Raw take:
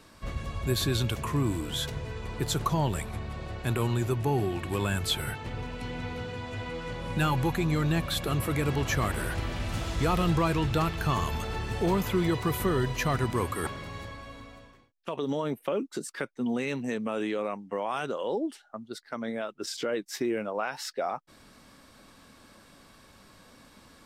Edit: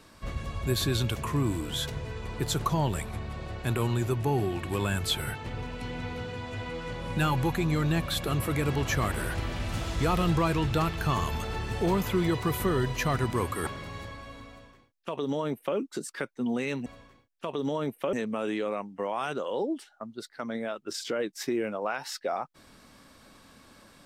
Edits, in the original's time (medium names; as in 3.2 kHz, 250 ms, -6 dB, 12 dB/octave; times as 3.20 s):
14.50–15.77 s: copy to 16.86 s